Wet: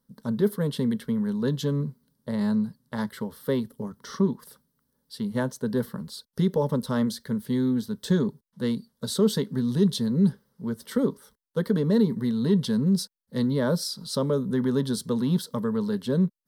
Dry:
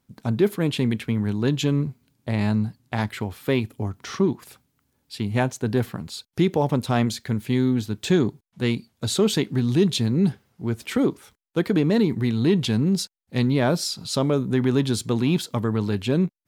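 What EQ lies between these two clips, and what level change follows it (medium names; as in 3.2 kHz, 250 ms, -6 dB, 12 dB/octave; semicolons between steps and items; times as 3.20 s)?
peaking EQ 1.3 kHz -5.5 dB 0.53 oct; peaking EQ 7 kHz -11 dB 0.25 oct; static phaser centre 490 Hz, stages 8; 0.0 dB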